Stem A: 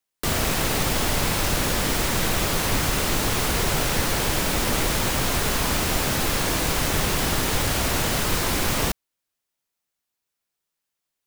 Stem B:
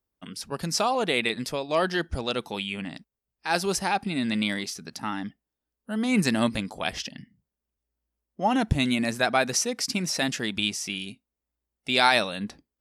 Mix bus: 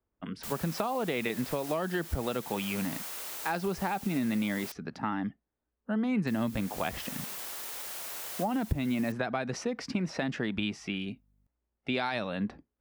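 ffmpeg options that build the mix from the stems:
-filter_complex "[0:a]highpass=540,aeval=exprs='val(0)+0.00355*(sin(2*PI*50*n/s)+sin(2*PI*2*50*n/s)/2+sin(2*PI*3*50*n/s)/3+sin(2*PI*4*50*n/s)/4+sin(2*PI*5*50*n/s)/5)':c=same,adelay=200,volume=-19dB,asplit=3[a][b][c];[a]atrim=end=4.72,asetpts=PTS-STARTPTS,afade=t=out:st=4.716:d=0.004:c=hsin[d];[b]atrim=start=4.72:end=6.27,asetpts=PTS-STARTPTS,volume=0[e];[c]atrim=start=6.27,asetpts=PTS-STARTPTS,afade=t=in:d=0.004:c=hsin[f];[d][e][f]concat=n=3:v=0:a=1[g];[1:a]lowpass=1.7k,volume=3dB,asplit=2[h][i];[i]apad=whole_len=505632[j];[g][j]sidechaincompress=threshold=-25dB:ratio=3:attack=16:release=619[k];[k][h]amix=inputs=2:normalize=0,acrossover=split=210|3000[l][m][n];[m]acompressor=threshold=-25dB:ratio=6[o];[l][o][n]amix=inputs=3:normalize=0,highshelf=f=8.8k:g=11.5,acompressor=threshold=-28dB:ratio=3"

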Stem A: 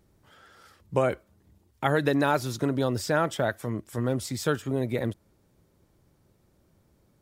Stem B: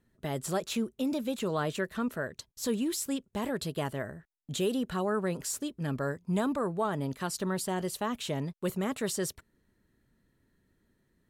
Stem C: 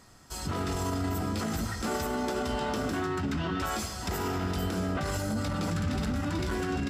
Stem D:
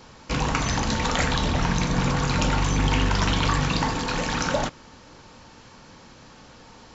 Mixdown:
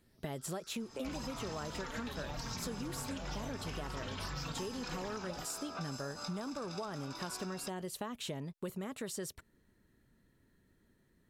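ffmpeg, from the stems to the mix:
-filter_complex "[0:a]lowshelf=f=470:g=-11.5,asplit=2[a][b];[b]afreqshift=0.98[c];[a][c]amix=inputs=2:normalize=1,volume=-2.5dB,asplit=2[d][e];[1:a]volume=1dB[f];[2:a]highpass=f=630:t=q:w=7.3,aecho=1:1:0.8:0.79,adelay=800,volume=-6dB[g];[3:a]alimiter=limit=-17dB:level=0:latency=1:release=425,asplit=2[h][i];[i]adelay=3.7,afreqshift=-1.9[j];[h][j]amix=inputs=2:normalize=1,adelay=750,volume=-2dB[k];[e]apad=whole_len=339560[l];[g][l]sidechaincompress=threshold=-38dB:ratio=8:attack=16:release=183[m];[d][m]amix=inputs=2:normalize=0,equalizer=f=5.4k:w=1.7:g=14.5,acompressor=threshold=-37dB:ratio=2.5,volume=0dB[n];[f][k][n]amix=inputs=3:normalize=0,acompressor=threshold=-37dB:ratio=12"

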